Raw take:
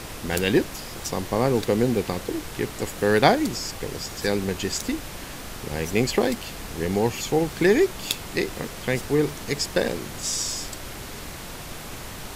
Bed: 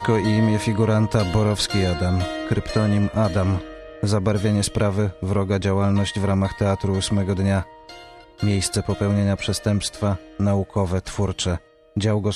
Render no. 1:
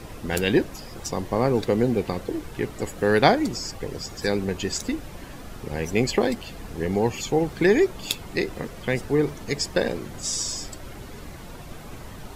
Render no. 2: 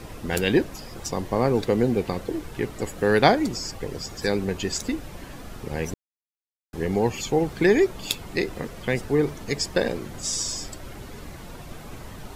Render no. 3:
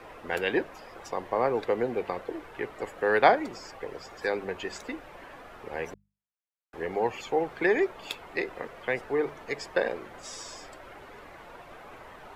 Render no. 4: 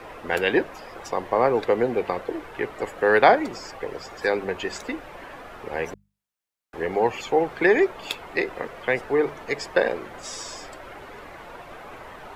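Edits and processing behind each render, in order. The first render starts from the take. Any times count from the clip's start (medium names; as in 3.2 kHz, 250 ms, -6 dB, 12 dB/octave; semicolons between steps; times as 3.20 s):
noise reduction 10 dB, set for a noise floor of -37 dBFS
5.94–6.73 s: mute
three-band isolator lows -17 dB, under 430 Hz, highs -17 dB, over 2.7 kHz; hum notches 50/100/150/200 Hz
trim +6 dB; peak limiter -3 dBFS, peak gain reduction 3 dB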